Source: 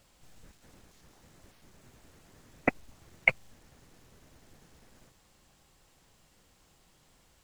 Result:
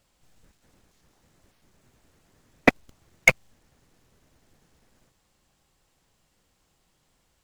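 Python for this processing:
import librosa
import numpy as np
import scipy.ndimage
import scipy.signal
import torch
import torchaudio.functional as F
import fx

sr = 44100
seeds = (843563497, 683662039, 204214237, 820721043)

y = fx.leveller(x, sr, passes=3)
y = y * 10.0 ** (1.0 / 20.0)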